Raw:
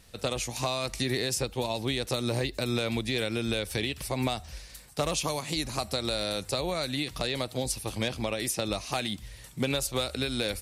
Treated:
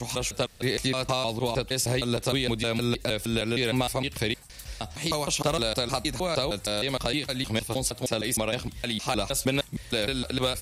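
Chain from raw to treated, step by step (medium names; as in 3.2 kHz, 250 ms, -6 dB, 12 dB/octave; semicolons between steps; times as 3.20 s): slices played last to first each 155 ms, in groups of 4; trim +3 dB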